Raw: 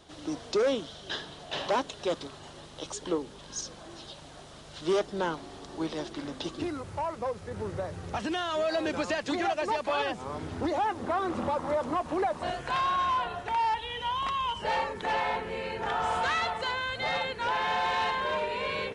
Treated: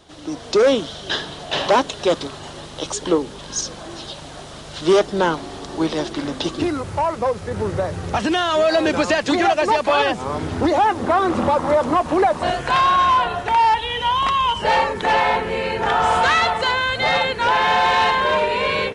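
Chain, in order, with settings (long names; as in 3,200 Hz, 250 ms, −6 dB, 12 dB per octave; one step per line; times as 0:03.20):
automatic gain control gain up to 7 dB
level +5 dB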